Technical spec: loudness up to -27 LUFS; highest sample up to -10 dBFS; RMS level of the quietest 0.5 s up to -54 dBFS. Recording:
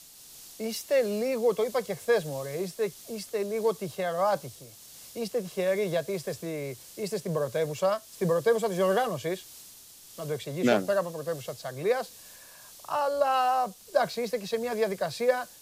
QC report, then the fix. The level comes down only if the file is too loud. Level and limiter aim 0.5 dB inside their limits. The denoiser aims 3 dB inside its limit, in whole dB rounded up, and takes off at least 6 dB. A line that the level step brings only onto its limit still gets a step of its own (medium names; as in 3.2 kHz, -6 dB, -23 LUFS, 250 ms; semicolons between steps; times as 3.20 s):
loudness -29.0 LUFS: pass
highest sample -9.0 dBFS: fail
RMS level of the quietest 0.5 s -50 dBFS: fail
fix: noise reduction 7 dB, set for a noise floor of -50 dBFS; peak limiter -10.5 dBFS